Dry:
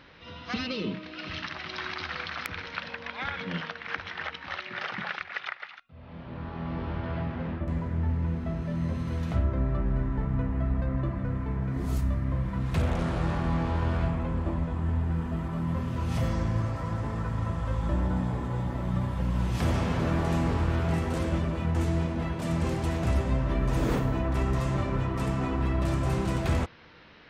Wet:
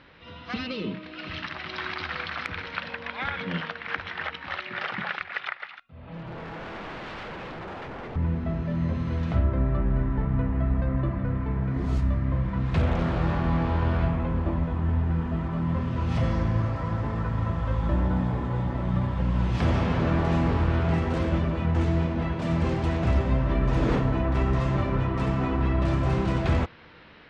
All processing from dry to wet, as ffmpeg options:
ffmpeg -i in.wav -filter_complex "[0:a]asettb=1/sr,asplit=3[link_01][link_02][link_03];[link_01]atrim=end=6.074[link_04];[link_02]atrim=start=6.07:end=8.16,asetpts=PTS-STARTPTS,afade=type=in:duration=0.004:curve=qsin,afade=type=out:start_time=2.086:duration=0.004:curve=qsin,aecho=1:1:6.3:0.86,atrim=end_sample=92169,aeval=exprs='0.0168*(abs(mod(val(0)/0.0168+3,4)-2)-1)':channel_layout=same[link_05];[link_03]atrim=start=8.156[link_06];[link_04][link_05]acrossfade=duration=0.004:curve1=hsin:curve2=qsin[link_07];[link_07][link_06]acrossfade=duration=0.004:curve1=qsin:curve2=hsin,lowpass=4200,dynaudnorm=framelen=940:gausssize=3:maxgain=3dB" out.wav

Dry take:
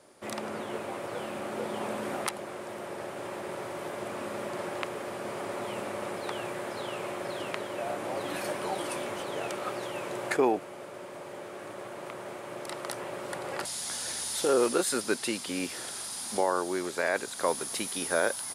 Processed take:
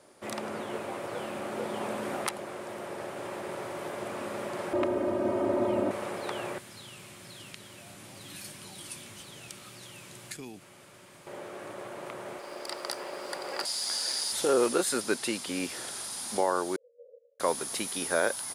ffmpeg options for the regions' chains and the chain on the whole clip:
ffmpeg -i in.wav -filter_complex "[0:a]asettb=1/sr,asplit=3[link_01][link_02][link_03];[link_01]atrim=end=4.734[link_04];[link_02]atrim=start=4.73:end=5.91,asetpts=PTS-STARTPTS,afade=type=in:duration=0.004:curve=qsin,afade=type=out:start_time=1.176:duration=0.004:curve=qsin,tiltshelf=frequency=970:gain=10,aecho=1:1:3.2:0.94,atrim=end_sample=52038[link_05];[link_03]atrim=start=5.906[link_06];[link_04][link_05]acrossfade=duration=0.004:curve1=hsin:curve2=qsin[link_07];[link_07][link_06]acrossfade=duration=0.004:curve1=qsin:curve2=hsin,asettb=1/sr,asplit=3[link_08][link_09][link_10];[link_08]atrim=end=6.584[link_11];[link_09]atrim=start=6.58:end=11.27,asetpts=PTS-STARTPTS,afade=type=in:duration=0.004:curve=qsin,afade=type=out:start_time=4.686:duration=0.004:curve=qsin,equalizer=frequency=510:width=0.55:gain=-11.5,acrossover=split=260|3000[link_12][link_13][link_14];[link_13]acompressor=threshold=-53dB:ratio=4:attack=3.2:release=140:knee=2.83:detection=peak[link_15];[link_12][link_15][link_14]amix=inputs=3:normalize=0[link_16];[link_10]atrim=start=11.266[link_17];[link_11][link_16]acrossfade=duration=0.004:curve1=hsin:curve2=qsin[link_18];[link_18][link_17]acrossfade=duration=0.004:curve1=qsin:curve2=hsin,asettb=1/sr,asplit=3[link_19][link_20][link_21];[link_19]atrim=end=12.394[link_22];[link_20]atrim=start=12.39:end=14.32,asetpts=PTS-STARTPTS,afade=type=in:duration=0.004:curve=qsin,afade=type=out:start_time=1.926:duration=0.004:curve=qsin,highpass=290,equalizer=frequency=4800:width=6.4:gain=14.5,aeval=exprs='sgn(val(0))*max(abs(val(0))-0.00133,0)':channel_layout=same[link_23];[link_21]atrim=start=14.316[link_24];[link_22][link_23]acrossfade=duration=0.004:curve1=hsin:curve2=qsin[link_25];[link_25][link_24]acrossfade=duration=0.004:curve1=qsin:curve2=hsin,asettb=1/sr,asplit=3[link_26][link_27][link_28];[link_26]atrim=end=16.764[link_29];[link_27]atrim=start=16.76:end=17.4,asetpts=PTS-STARTPTS,afade=type=in:duration=0.004:curve=qsin,afade=type=out:start_time=0.636:duration=0.004:curve=qsin,aecho=1:1:3.9:0.87,atrim=end_sample=28224,afreqshift=-380,asuperpass=centerf=510:order=8:qfactor=6.3[link_30];[link_28]atrim=start=17.396[link_31];[link_29][link_30]acrossfade=duration=0.004:curve1=hsin:curve2=qsin[link_32];[link_32][link_31]acrossfade=duration=0.004:curve1=qsin:curve2=hsin" out.wav

